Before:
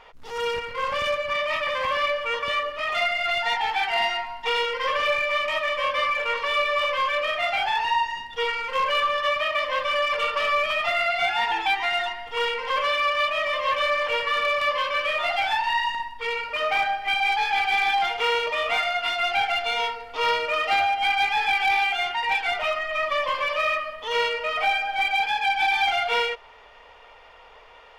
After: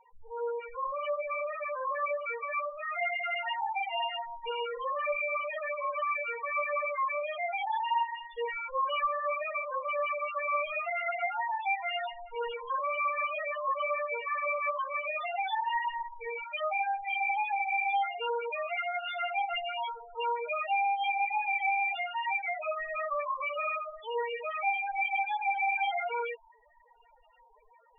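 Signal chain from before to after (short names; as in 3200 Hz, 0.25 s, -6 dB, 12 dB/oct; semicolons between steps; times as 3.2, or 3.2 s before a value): tracing distortion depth 0.027 ms; loudest bins only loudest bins 4; gain -5 dB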